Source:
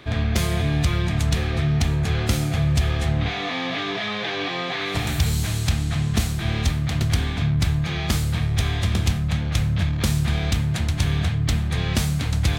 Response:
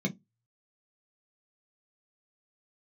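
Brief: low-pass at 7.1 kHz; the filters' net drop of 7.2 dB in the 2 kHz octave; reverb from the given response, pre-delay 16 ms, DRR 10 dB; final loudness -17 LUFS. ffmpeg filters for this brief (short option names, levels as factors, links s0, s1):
-filter_complex "[0:a]lowpass=7100,equalizer=f=2000:t=o:g=-9,asplit=2[s0][s1];[1:a]atrim=start_sample=2205,adelay=16[s2];[s1][s2]afir=irnorm=-1:irlink=0,volume=0.178[s3];[s0][s3]amix=inputs=2:normalize=0,volume=1.58"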